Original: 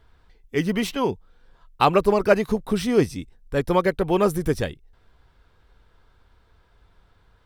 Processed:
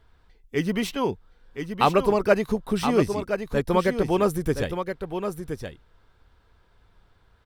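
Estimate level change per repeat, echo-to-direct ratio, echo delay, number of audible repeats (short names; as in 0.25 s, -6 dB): no steady repeat, -7.5 dB, 1.021 s, 1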